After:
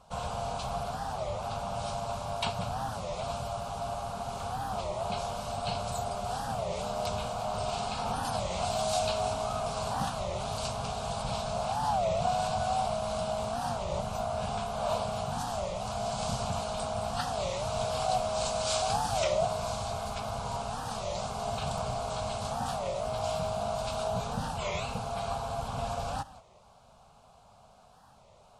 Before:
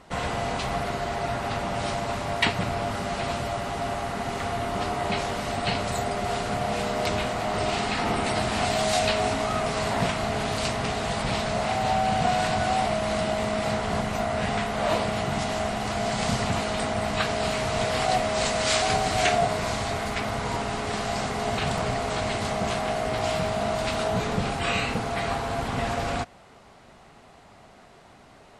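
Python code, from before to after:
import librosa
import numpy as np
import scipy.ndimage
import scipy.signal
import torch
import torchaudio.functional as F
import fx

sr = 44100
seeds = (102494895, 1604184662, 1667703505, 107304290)

y = fx.peak_eq(x, sr, hz=2000.0, db=3.5, octaves=0.62)
y = fx.fixed_phaser(y, sr, hz=800.0, stages=4)
y = y + 10.0 ** (-17.5 / 20.0) * np.pad(y, (int(191 * sr / 1000.0), 0))[:len(y)]
y = fx.record_warp(y, sr, rpm=33.33, depth_cents=250.0)
y = F.gain(torch.from_numpy(y), -4.5).numpy()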